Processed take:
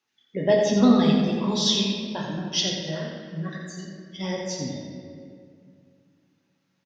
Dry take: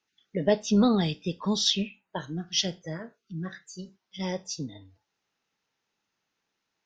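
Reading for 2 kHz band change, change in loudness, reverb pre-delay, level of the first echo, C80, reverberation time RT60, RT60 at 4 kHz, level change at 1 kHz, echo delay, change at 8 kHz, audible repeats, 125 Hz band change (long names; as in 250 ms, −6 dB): +5.0 dB, +4.5 dB, 7 ms, −7.0 dB, 2.0 dB, 2.2 s, 1.4 s, +4.0 dB, 86 ms, can't be measured, 1, +4.0 dB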